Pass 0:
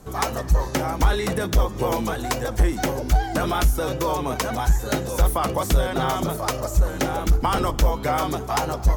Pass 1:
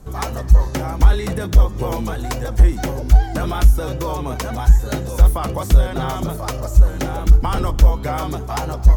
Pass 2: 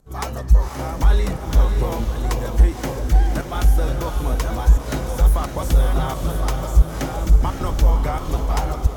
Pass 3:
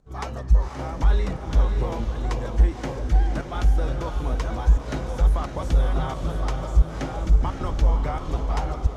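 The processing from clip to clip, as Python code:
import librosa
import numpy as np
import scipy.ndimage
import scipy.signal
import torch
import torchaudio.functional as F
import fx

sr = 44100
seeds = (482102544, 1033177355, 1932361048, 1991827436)

y1 = fx.low_shelf(x, sr, hz=130.0, db=12.0)
y1 = y1 * librosa.db_to_amplitude(-2.0)
y2 = fx.volume_shaper(y1, sr, bpm=88, per_beat=1, depth_db=-16, release_ms=105.0, shape='slow start')
y2 = fx.echo_diffused(y2, sr, ms=545, feedback_pct=43, wet_db=-5.0)
y2 = y2 * librosa.db_to_amplitude(-2.5)
y3 = fx.air_absorb(y2, sr, metres=78.0)
y3 = y3 * librosa.db_to_amplitude(-4.0)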